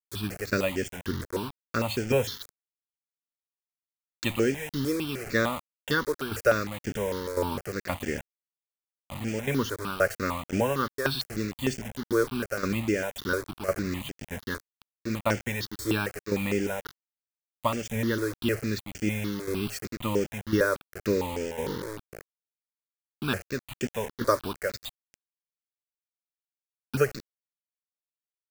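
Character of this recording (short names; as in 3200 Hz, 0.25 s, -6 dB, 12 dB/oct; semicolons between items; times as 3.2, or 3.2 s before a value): tremolo saw down 1.9 Hz, depth 75%; a quantiser's noise floor 6-bit, dither none; notches that jump at a steady rate 6.6 Hz 770–3900 Hz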